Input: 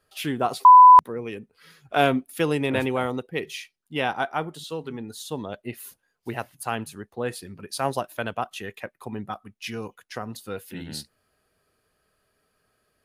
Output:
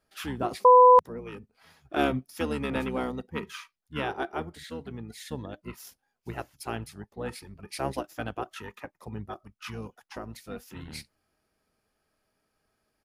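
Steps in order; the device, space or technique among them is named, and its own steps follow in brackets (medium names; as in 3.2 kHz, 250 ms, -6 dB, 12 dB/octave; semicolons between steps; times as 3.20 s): octave pedal (harmony voices -12 st -2 dB); trim -7.5 dB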